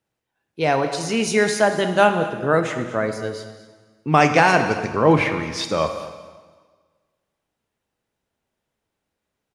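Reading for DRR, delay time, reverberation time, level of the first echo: 6.5 dB, 226 ms, 1.5 s, -16.0 dB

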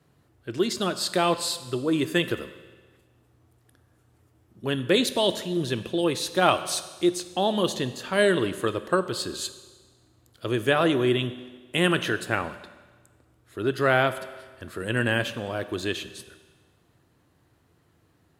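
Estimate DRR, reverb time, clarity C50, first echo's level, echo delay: 11.5 dB, 1.4 s, 13.0 dB, no echo, no echo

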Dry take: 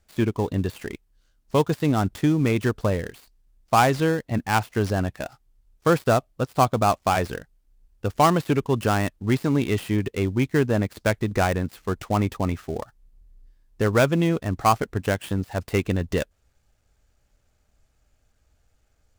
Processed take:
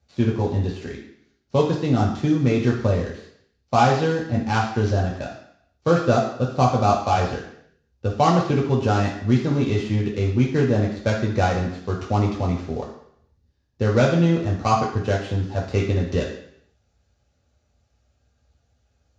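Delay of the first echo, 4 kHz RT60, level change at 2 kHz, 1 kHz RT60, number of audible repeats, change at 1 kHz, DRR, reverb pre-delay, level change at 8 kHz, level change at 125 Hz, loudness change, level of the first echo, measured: no echo, 0.70 s, -1.5 dB, 0.70 s, no echo, +1.0 dB, -3.0 dB, 3 ms, -3.0 dB, +4.0 dB, +2.0 dB, no echo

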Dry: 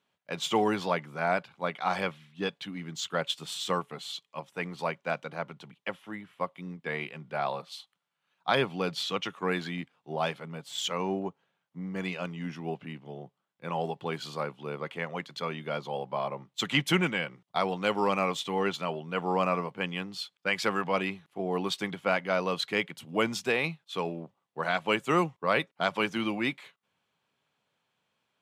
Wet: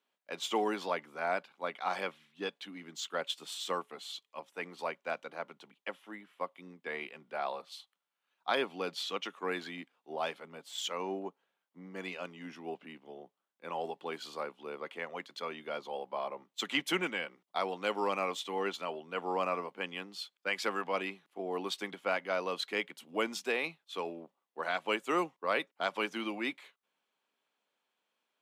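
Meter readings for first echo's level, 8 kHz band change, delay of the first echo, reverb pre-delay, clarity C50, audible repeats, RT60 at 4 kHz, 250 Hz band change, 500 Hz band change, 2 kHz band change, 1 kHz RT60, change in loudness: no echo, -4.5 dB, no echo, no reverb, no reverb, no echo, no reverb, -8.0 dB, -5.0 dB, -5.0 dB, no reverb, -5.5 dB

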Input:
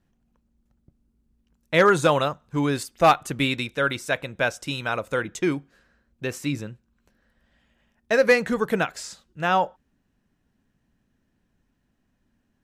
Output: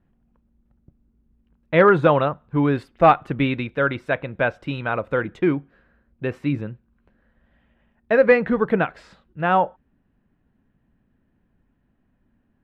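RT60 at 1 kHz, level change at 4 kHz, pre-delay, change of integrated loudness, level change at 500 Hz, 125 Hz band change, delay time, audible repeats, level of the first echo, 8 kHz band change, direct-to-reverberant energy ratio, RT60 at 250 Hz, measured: no reverb, -7.5 dB, no reverb, +2.5 dB, +3.5 dB, +4.5 dB, no echo, no echo, no echo, under -25 dB, no reverb, no reverb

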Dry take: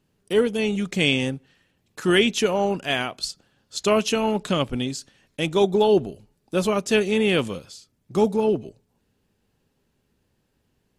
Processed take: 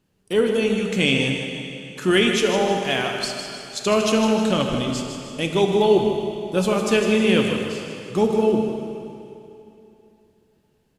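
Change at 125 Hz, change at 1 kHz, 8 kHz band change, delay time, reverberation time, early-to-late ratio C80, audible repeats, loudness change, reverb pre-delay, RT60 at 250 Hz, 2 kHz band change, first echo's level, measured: +2.5 dB, +2.0 dB, +2.0 dB, 155 ms, 2.9 s, 3.0 dB, 2, +1.5 dB, 4 ms, 2.9 s, +2.0 dB, -8.5 dB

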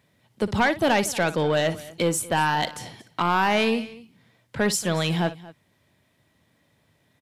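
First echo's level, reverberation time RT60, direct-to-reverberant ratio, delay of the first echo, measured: -15.5 dB, no reverb, no reverb, 58 ms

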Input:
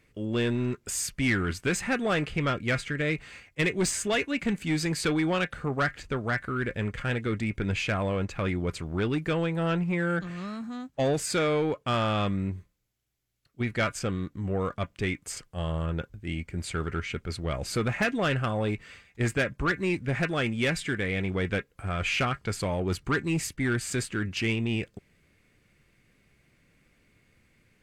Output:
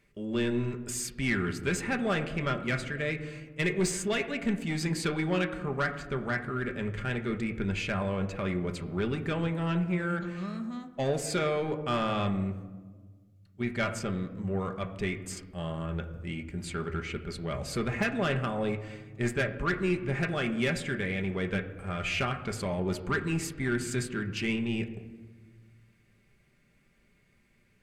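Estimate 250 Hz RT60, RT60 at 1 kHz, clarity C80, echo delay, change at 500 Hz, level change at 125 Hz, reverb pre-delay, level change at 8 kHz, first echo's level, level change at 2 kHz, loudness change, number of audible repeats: 2.0 s, 1.2 s, 13.0 dB, no echo, -2.0 dB, -3.0 dB, 5 ms, -4.0 dB, no echo, -3.0 dB, -2.5 dB, no echo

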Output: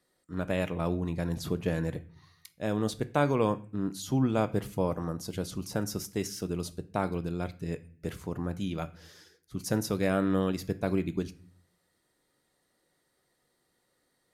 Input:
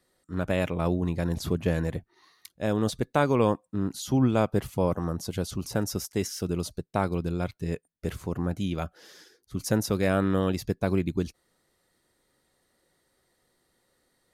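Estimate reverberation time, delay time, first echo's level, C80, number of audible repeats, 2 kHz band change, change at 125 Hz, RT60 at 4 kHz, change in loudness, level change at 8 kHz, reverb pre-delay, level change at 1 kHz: 0.45 s, no echo, no echo, 21.0 dB, no echo, -3.0 dB, -4.0 dB, 0.35 s, -3.5 dB, -3.5 dB, 3 ms, -3.0 dB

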